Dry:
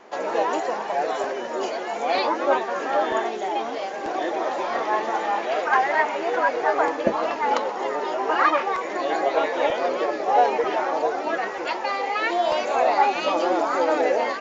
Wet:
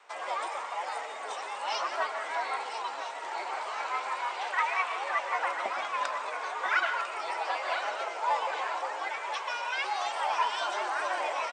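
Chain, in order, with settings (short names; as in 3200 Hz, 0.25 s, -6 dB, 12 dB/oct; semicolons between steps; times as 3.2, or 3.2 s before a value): HPF 740 Hz 12 dB/oct; frequency shift -39 Hz; varispeed +25%; echo 0.998 s -10.5 dB; on a send at -9 dB: reverb RT60 0.70 s, pre-delay 0.113 s; on the sum: gain -7 dB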